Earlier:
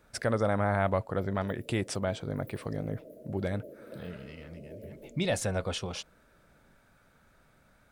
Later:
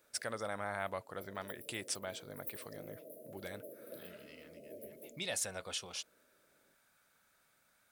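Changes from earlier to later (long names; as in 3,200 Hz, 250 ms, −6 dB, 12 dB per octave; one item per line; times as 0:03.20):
speech −9.5 dB
master: add spectral tilt +3.5 dB per octave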